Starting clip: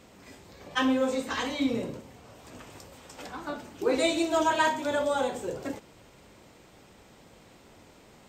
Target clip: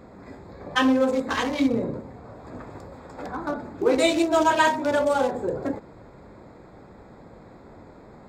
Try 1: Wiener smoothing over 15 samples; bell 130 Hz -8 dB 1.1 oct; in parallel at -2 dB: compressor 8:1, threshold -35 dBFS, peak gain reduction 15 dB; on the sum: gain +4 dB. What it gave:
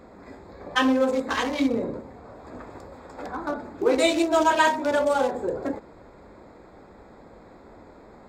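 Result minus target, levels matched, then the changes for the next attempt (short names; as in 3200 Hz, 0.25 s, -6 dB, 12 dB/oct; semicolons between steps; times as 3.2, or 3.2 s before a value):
125 Hz band -5.0 dB
remove: bell 130 Hz -8 dB 1.1 oct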